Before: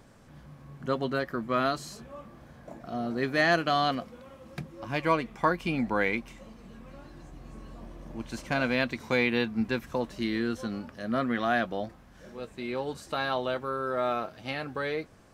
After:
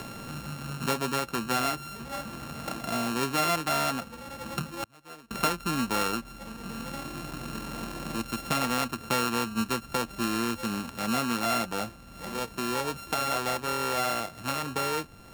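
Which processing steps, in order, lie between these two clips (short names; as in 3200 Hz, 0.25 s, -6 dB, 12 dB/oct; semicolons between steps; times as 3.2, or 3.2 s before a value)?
sample sorter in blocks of 32 samples; 4.83–5.31 flipped gate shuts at -29 dBFS, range -35 dB; three-band squash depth 70%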